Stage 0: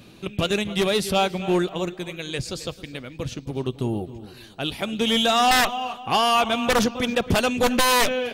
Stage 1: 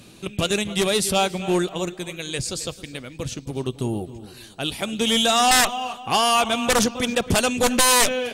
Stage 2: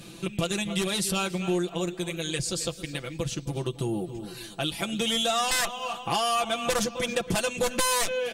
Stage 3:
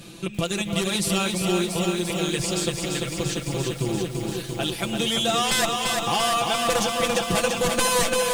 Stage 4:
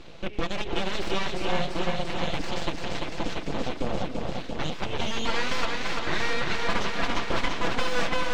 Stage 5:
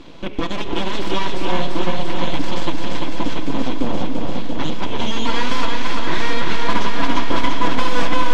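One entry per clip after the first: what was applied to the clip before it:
bell 8500 Hz +10.5 dB 1.1 oct
comb 5.9 ms, depth 78%; compressor 2.5:1, threshold -28 dBFS, peak gain reduction 12 dB
lo-fi delay 0.342 s, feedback 80%, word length 8-bit, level -4 dB; gain +2 dB
full-wave rectifier; air absorption 180 m; gain +1 dB
small resonant body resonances 270/980/3300 Hz, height 10 dB, ringing for 35 ms; reverb RT60 5.1 s, pre-delay 42 ms, DRR 9 dB; gain +3 dB

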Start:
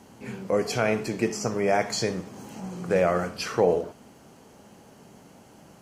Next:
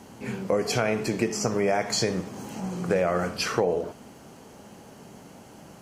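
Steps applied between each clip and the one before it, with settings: compressor 6:1, threshold -24 dBFS, peak gain reduction 8.5 dB; gain +4 dB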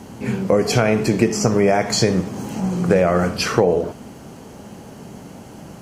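low shelf 310 Hz +6.5 dB; gain +6 dB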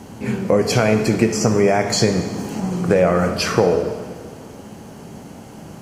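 plate-style reverb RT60 2 s, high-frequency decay 0.85×, DRR 8.5 dB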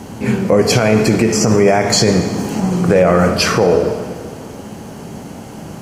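maximiser +7.5 dB; gain -1 dB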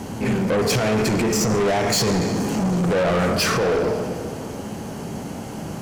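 soft clip -17 dBFS, distortion -7 dB

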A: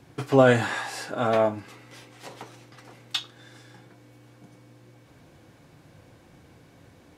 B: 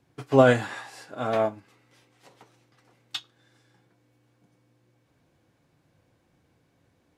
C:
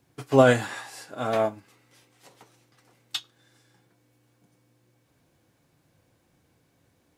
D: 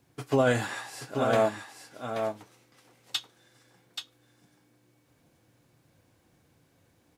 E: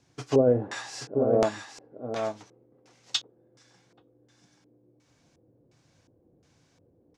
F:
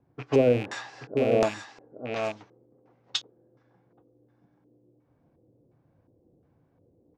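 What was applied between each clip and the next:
upward expander 1.5:1, over -42 dBFS; gain +1 dB
high shelf 6500 Hz +10 dB
limiter -13.5 dBFS, peak gain reduction 8.5 dB; echo 0.83 s -6.5 dB
LFO low-pass square 1.4 Hz 450–6100 Hz
rattling part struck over -40 dBFS, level -26 dBFS; low-pass opened by the level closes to 930 Hz, open at -23.5 dBFS

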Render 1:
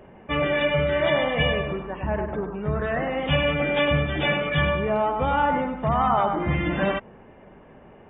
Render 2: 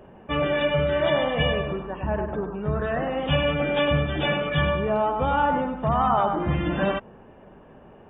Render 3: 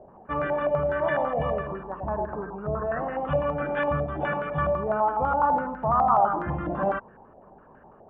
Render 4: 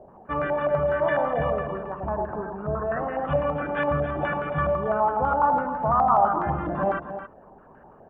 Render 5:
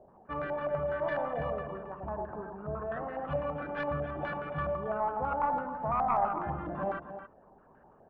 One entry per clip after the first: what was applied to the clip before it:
bell 2100 Hz -9.5 dB 0.26 oct
stepped low-pass 12 Hz 700–1600 Hz; gain -6.5 dB
echo 0.272 s -10.5 dB; gain +1 dB
tracing distortion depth 0.042 ms; gain -9 dB

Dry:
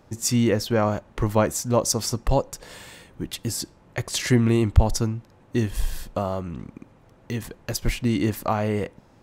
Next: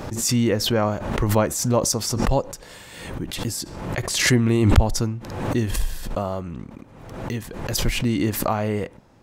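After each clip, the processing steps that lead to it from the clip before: backwards sustainer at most 51 dB/s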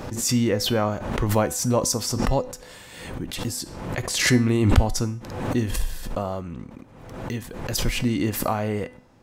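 resonator 250 Hz, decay 0.45 s, harmonics all, mix 60%; gain +5.5 dB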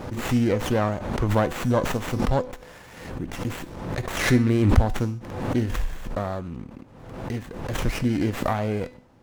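running maximum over 9 samples

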